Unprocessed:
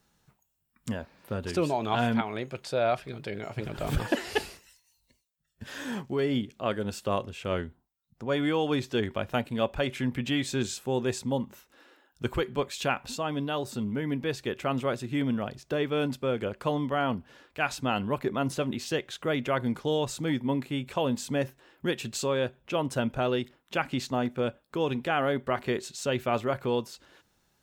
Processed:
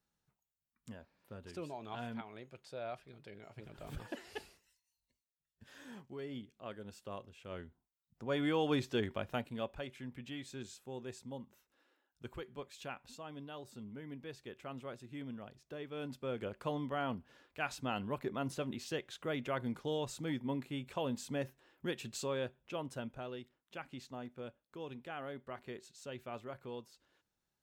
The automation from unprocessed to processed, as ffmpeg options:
-af "volume=1.33,afade=t=in:st=7.47:d=1.26:silence=0.251189,afade=t=out:st=8.73:d=1.19:silence=0.251189,afade=t=in:st=15.89:d=0.54:silence=0.421697,afade=t=out:st=22.35:d=0.92:silence=0.398107"

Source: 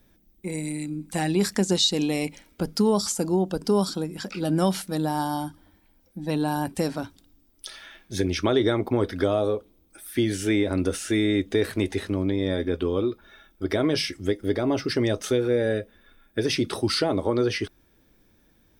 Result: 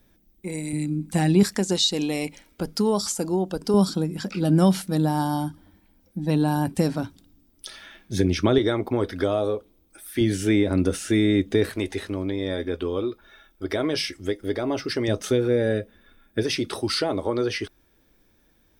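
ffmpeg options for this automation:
-af "asetnsamples=n=441:p=0,asendcmd='0.73 equalizer g 8;1.43 equalizer g -2;3.74 equalizer g 7;8.58 equalizer g -1.5;10.21 equalizer g 5.5;11.69 equalizer g -5;15.08 equalizer g 4;16.43 equalizer g -4',equalizer=f=150:t=o:w=2:g=-0.5"

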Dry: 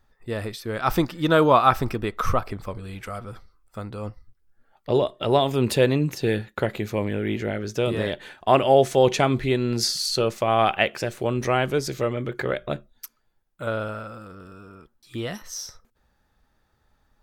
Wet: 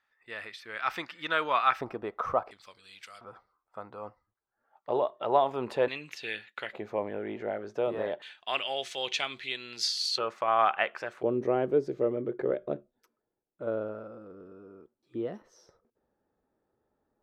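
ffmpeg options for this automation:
-af "asetnsamples=n=441:p=0,asendcmd='1.81 bandpass f 730;2.51 bandpass f 4100;3.21 bandpass f 890;5.88 bandpass f 2600;6.73 bandpass f 750;8.22 bandpass f 3200;10.18 bandpass f 1200;11.23 bandpass f 400',bandpass=f=2100:t=q:w=1.6:csg=0"

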